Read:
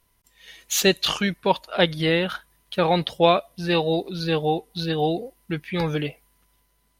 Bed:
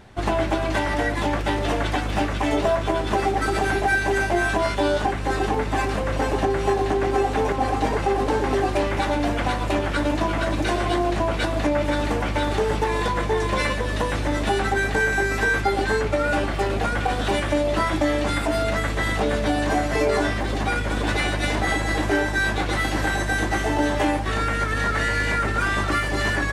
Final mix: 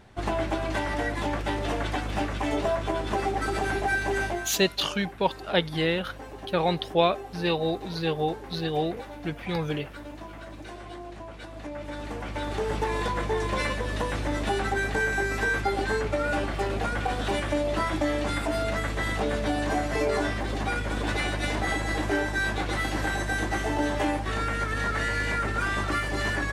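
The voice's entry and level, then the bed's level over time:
3.75 s, −4.5 dB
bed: 0:04.27 −5.5 dB
0:04.54 −18.5 dB
0:11.43 −18.5 dB
0:12.81 −5 dB

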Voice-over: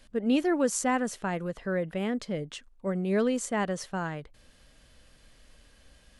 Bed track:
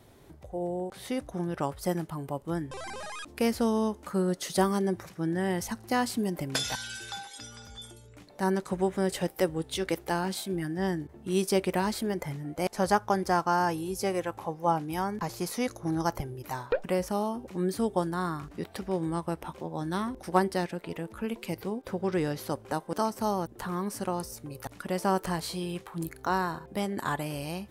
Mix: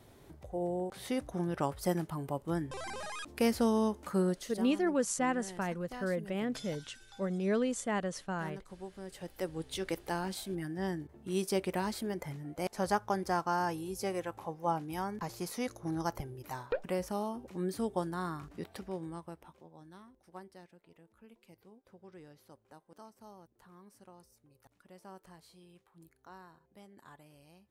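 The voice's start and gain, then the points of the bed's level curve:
4.35 s, −4.5 dB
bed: 0:04.27 −2 dB
0:04.62 −18 dB
0:09.04 −18 dB
0:09.65 −6 dB
0:18.68 −6 dB
0:20.08 −24.5 dB

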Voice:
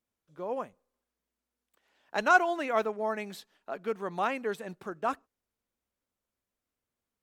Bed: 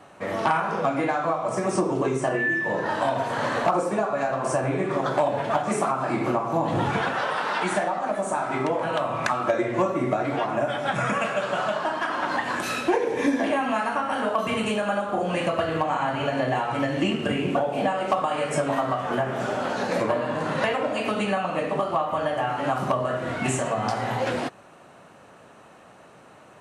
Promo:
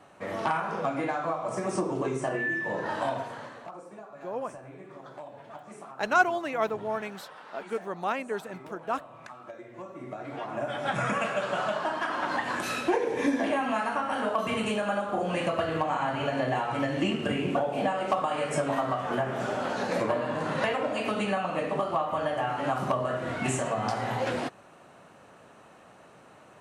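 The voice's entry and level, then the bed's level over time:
3.85 s, 0.0 dB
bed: 0:03.13 −5.5 dB
0:03.58 −21 dB
0:09.72 −21 dB
0:10.88 −3.5 dB

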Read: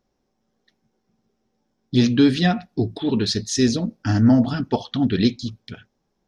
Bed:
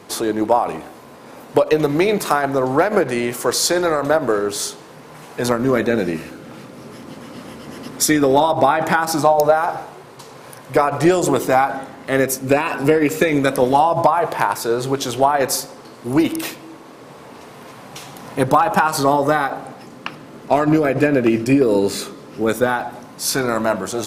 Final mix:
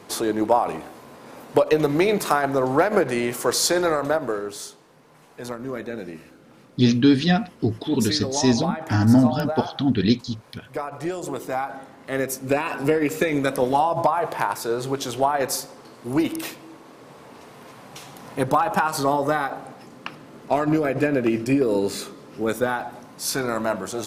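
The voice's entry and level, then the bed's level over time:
4.85 s, −0.5 dB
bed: 0:03.90 −3 dB
0:04.81 −14 dB
0:11.12 −14 dB
0:12.62 −5.5 dB

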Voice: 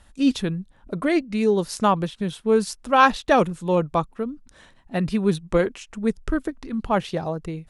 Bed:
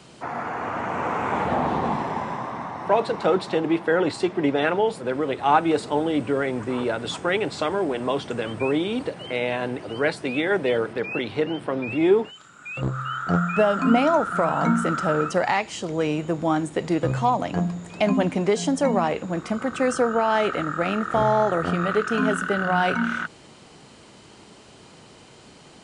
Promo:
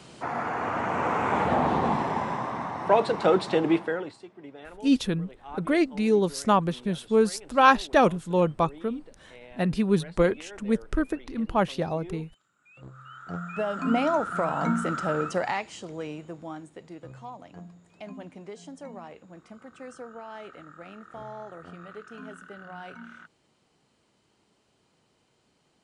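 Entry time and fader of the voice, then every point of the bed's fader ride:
4.65 s, −2.0 dB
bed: 0:03.75 −0.5 dB
0:04.24 −23 dB
0:12.64 −23 dB
0:14.01 −5 dB
0:15.35 −5 dB
0:16.93 −20.5 dB

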